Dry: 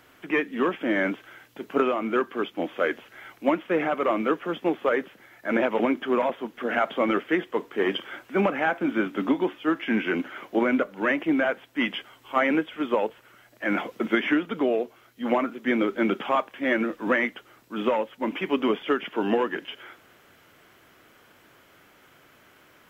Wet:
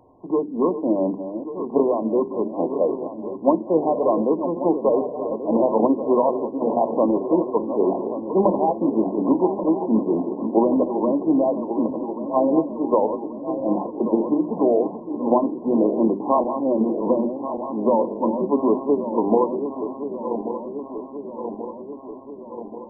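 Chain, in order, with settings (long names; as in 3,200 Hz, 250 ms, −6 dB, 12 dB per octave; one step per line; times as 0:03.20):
feedback delay that plays each chunk backwards 567 ms, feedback 78%, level −9.5 dB
linear-phase brick-wall low-pass 1,100 Hz
mains-hum notches 50/100/150/200/250/300/350/400 Hz
level +5.5 dB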